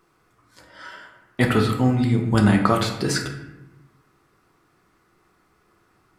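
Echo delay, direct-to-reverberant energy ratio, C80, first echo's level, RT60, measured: no echo audible, 2.0 dB, 9.0 dB, no echo audible, 0.95 s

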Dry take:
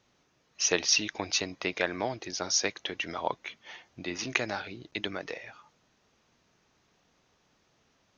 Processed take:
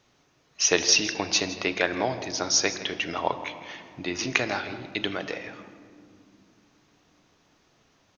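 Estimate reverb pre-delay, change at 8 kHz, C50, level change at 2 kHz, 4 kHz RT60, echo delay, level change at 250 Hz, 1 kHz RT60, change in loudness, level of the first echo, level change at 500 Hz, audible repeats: 3 ms, +5.0 dB, 10.5 dB, +5.0 dB, 1.2 s, 162 ms, +6.0 dB, 2.1 s, +5.0 dB, −15.5 dB, +5.0 dB, 1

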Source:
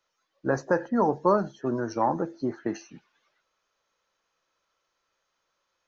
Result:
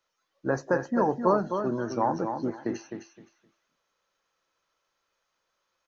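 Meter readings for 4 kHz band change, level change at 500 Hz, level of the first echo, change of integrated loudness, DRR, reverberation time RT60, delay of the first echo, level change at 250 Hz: −0.5 dB, −1.0 dB, −7.0 dB, −1.0 dB, no reverb audible, no reverb audible, 259 ms, −0.5 dB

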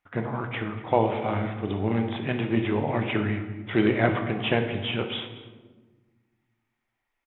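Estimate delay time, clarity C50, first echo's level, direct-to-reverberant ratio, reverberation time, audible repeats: 238 ms, 7.5 dB, −18.5 dB, 5.0 dB, 1.3 s, 1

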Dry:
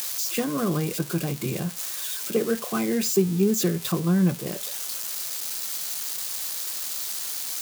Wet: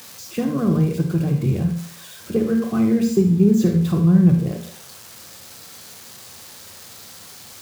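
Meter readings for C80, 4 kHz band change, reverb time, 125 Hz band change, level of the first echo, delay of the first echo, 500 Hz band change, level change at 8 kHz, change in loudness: 10.5 dB, −7.0 dB, 0.55 s, +9.5 dB, no echo audible, no echo audible, +2.5 dB, −9.5 dB, +7.0 dB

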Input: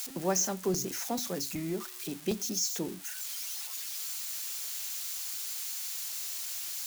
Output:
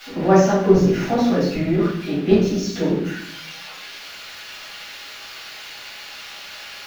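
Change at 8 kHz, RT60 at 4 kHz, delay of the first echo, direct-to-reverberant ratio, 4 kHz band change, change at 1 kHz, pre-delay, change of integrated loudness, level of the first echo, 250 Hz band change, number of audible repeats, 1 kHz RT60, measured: −6.0 dB, 0.60 s, no echo audible, −10.0 dB, +6.0 dB, +16.0 dB, 4 ms, +14.5 dB, no echo audible, +17.5 dB, no echo audible, 0.60 s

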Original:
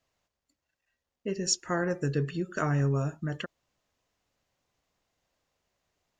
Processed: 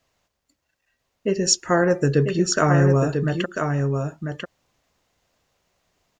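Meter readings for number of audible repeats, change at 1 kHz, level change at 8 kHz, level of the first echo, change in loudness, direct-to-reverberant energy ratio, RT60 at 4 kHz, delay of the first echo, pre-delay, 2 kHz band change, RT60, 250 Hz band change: 1, +11.5 dB, +9.5 dB, −5.5 dB, +9.5 dB, no reverb audible, no reverb audible, 994 ms, no reverb audible, +10.0 dB, no reverb audible, +10.5 dB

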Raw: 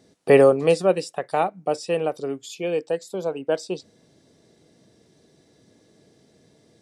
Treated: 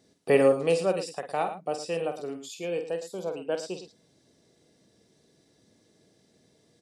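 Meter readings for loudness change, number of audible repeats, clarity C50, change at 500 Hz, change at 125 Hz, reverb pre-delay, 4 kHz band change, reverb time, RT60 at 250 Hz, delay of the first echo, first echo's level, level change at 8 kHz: −6.0 dB, 2, no reverb audible, −6.0 dB, −7.0 dB, no reverb audible, −4.0 dB, no reverb audible, no reverb audible, 48 ms, −8.5 dB, −3.0 dB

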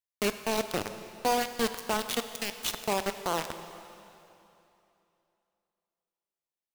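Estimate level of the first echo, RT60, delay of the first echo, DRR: no echo audible, 2.9 s, no echo audible, 9.0 dB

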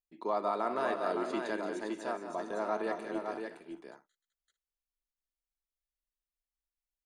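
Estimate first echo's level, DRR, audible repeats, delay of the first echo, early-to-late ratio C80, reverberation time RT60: −9.5 dB, no reverb audible, 5, 176 ms, no reverb audible, no reverb audible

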